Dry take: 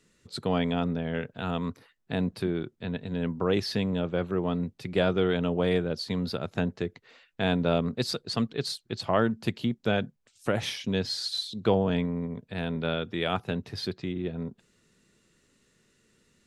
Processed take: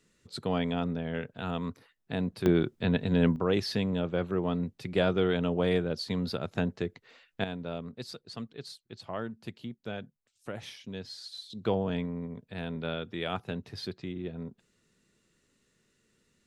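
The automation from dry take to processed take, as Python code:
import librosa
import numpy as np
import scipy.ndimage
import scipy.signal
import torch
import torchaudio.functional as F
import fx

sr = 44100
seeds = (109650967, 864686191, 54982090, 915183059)

y = fx.gain(x, sr, db=fx.steps((0.0, -3.0), (2.46, 6.0), (3.36, -1.5), (7.44, -12.0), (11.5, -5.0)))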